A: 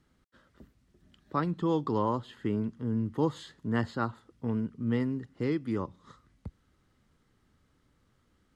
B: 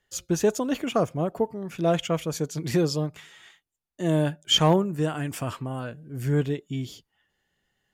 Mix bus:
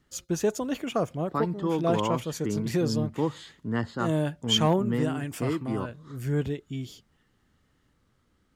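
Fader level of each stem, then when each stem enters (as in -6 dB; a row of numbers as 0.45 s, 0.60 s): +0.5 dB, -3.5 dB; 0.00 s, 0.00 s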